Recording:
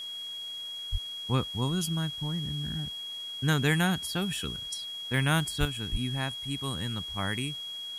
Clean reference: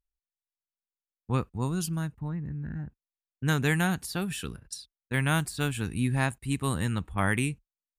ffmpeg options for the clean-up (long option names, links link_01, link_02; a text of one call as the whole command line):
ffmpeg -i in.wav -filter_complex "[0:a]bandreject=frequency=3300:width=30,asplit=3[link_01][link_02][link_03];[link_01]afade=type=out:start_time=0.91:duration=0.02[link_04];[link_02]highpass=frequency=140:width=0.5412,highpass=frequency=140:width=1.3066,afade=type=in:start_time=0.91:duration=0.02,afade=type=out:start_time=1.03:duration=0.02[link_05];[link_03]afade=type=in:start_time=1.03:duration=0.02[link_06];[link_04][link_05][link_06]amix=inputs=3:normalize=0,asplit=3[link_07][link_08][link_09];[link_07]afade=type=out:start_time=5.59:duration=0.02[link_10];[link_08]highpass=frequency=140:width=0.5412,highpass=frequency=140:width=1.3066,afade=type=in:start_time=5.59:duration=0.02,afade=type=out:start_time=5.71:duration=0.02[link_11];[link_09]afade=type=in:start_time=5.71:duration=0.02[link_12];[link_10][link_11][link_12]amix=inputs=3:normalize=0,asplit=3[link_13][link_14][link_15];[link_13]afade=type=out:start_time=5.91:duration=0.02[link_16];[link_14]highpass=frequency=140:width=0.5412,highpass=frequency=140:width=1.3066,afade=type=in:start_time=5.91:duration=0.02,afade=type=out:start_time=6.03:duration=0.02[link_17];[link_15]afade=type=in:start_time=6.03:duration=0.02[link_18];[link_16][link_17][link_18]amix=inputs=3:normalize=0,afwtdn=0.0022,asetnsamples=nb_out_samples=441:pad=0,asendcmd='5.65 volume volume 6dB',volume=0dB" out.wav